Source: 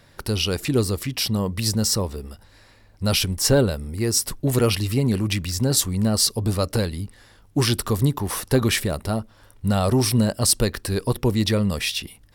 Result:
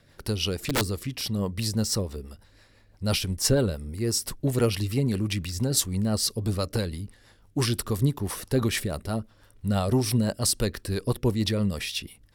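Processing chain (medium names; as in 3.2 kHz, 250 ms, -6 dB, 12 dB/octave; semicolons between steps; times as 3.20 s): 0.59–1.22 s: integer overflow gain 14 dB; rotary cabinet horn 6 Hz; trim -3 dB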